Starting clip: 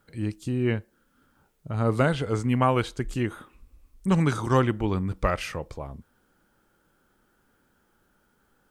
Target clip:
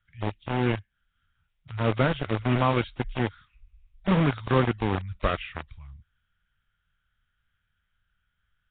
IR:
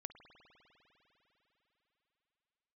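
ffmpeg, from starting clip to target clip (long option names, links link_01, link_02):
-filter_complex "[0:a]acrossover=split=120|1600[link_01][link_02][link_03];[link_02]acrusher=bits=3:mix=0:aa=0.000001[link_04];[link_01][link_04][link_03]amix=inputs=3:normalize=0,volume=-1dB" -ar 8000 -c:a nellymoser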